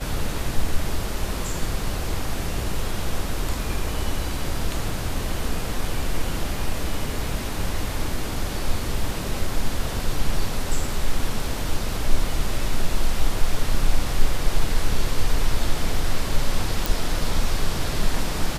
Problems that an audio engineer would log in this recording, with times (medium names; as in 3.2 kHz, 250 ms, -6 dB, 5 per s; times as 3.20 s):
16.86 s: pop